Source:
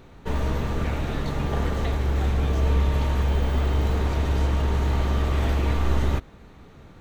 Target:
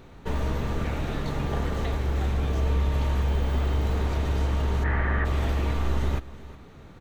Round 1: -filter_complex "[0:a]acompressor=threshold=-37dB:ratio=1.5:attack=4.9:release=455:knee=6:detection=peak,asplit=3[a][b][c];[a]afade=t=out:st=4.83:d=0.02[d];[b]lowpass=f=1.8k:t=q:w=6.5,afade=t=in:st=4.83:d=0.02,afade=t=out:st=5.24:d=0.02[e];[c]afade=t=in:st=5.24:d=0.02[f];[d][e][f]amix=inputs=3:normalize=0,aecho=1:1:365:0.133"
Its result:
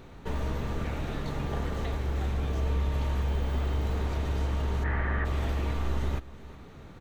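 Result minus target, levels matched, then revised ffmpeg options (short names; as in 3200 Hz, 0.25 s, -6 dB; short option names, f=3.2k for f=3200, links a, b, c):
compressor: peak gain reduction +4 dB
-filter_complex "[0:a]acompressor=threshold=-25dB:ratio=1.5:attack=4.9:release=455:knee=6:detection=peak,asplit=3[a][b][c];[a]afade=t=out:st=4.83:d=0.02[d];[b]lowpass=f=1.8k:t=q:w=6.5,afade=t=in:st=4.83:d=0.02,afade=t=out:st=5.24:d=0.02[e];[c]afade=t=in:st=5.24:d=0.02[f];[d][e][f]amix=inputs=3:normalize=0,aecho=1:1:365:0.133"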